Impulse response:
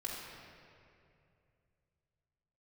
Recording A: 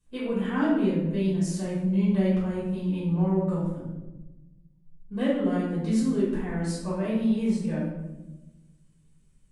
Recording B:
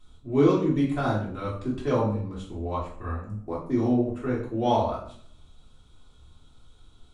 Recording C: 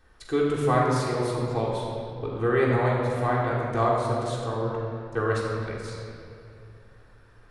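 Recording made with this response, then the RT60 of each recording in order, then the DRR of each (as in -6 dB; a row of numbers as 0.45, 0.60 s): C; 1.1, 0.60, 2.6 s; -9.5, -7.5, -6.0 dB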